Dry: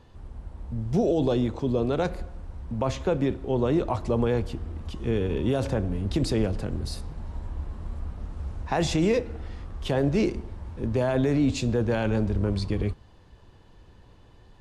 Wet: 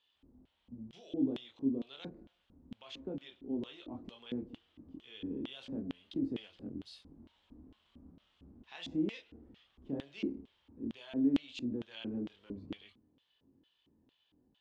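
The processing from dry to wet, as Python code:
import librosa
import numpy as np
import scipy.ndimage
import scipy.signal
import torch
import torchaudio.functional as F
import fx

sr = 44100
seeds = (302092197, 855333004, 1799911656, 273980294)

y = fx.chorus_voices(x, sr, voices=2, hz=0.15, base_ms=26, depth_ms=3.7, mix_pct=40)
y = fx.filter_lfo_bandpass(y, sr, shape='square', hz=2.2, low_hz=270.0, high_hz=3200.0, q=5.5)
y = F.gain(torch.from_numpy(y), 1.0).numpy()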